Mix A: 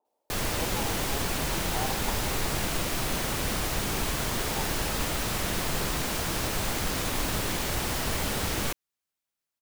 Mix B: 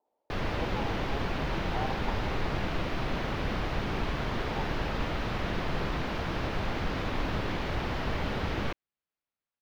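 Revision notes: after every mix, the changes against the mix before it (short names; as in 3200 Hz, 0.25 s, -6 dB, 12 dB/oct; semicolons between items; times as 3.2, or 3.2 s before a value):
master: add air absorption 290 m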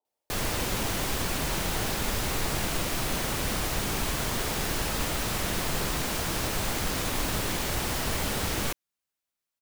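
speech -11.0 dB; master: remove air absorption 290 m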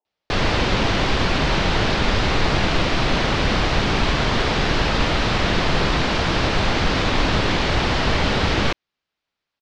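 background +11.0 dB; master: add LPF 4600 Hz 24 dB/oct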